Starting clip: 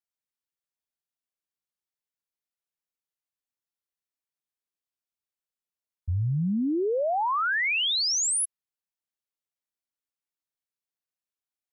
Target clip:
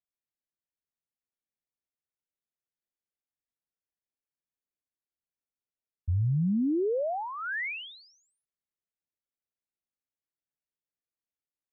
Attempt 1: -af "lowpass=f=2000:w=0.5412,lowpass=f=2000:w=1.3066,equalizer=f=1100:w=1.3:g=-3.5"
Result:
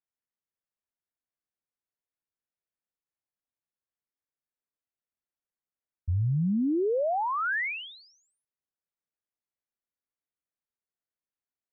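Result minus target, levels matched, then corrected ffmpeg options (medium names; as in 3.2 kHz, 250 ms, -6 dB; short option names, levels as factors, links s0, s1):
1 kHz band +4.5 dB
-af "lowpass=f=2000:w=0.5412,lowpass=f=2000:w=1.3066,equalizer=f=1100:w=1.3:g=-12.5"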